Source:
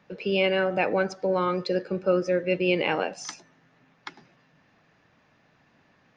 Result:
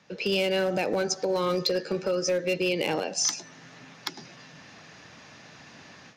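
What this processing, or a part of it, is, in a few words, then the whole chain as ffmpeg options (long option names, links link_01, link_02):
FM broadcast chain: -filter_complex "[0:a]lowpass=frequency=6700:width=0.5412,lowpass=frequency=6700:width=1.3066,asettb=1/sr,asplit=3[link_01][link_02][link_03];[link_01]atrim=end=1.004[link_04];[link_02]atrim=start=1:end=2.73,asetpts=PTS-STARTPTS,afade=type=in:duration=0.004:curve=qsin,afade=type=out:start_time=1.726:duration=0.004:curve=qsin,asplit=2[link_05][link_06];[link_06]adelay=13,volume=-7dB[link_07];[link_05][link_07]amix=inputs=2:normalize=0,atrim=end_sample=76293[link_08];[link_03]atrim=start=2.726[link_09];[link_04][link_08]acrossfade=duration=0.004:curve1=hsin:curve2=qsin[link_10];[link_10][link_09]acrossfade=duration=0.004:curve1=qsin:curve2=hsin,highpass=62,dynaudnorm=framelen=190:gausssize=3:maxgain=12.5dB,acrossover=split=760|4100[link_11][link_12][link_13];[link_11]acompressor=threshold=-20dB:ratio=4[link_14];[link_12]acompressor=threshold=-33dB:ratio=4[link_15];[link_13]acompressor=threshold=-37dB:ratio=4[link_16];[link_14][link_15][link_16]amix=inputs=3:normalize=0,aemphasis=mode=production:type=50fm,alimiter=limit=-16.5dB:level=0:latency=1:release=353,asoftclip=type=hard:threshold=-19dB,lowpass=frequency=15000:width=0.5412,lowpass=frequency=15000:width=1.3066,aemphasis=mode=production:type=50fm"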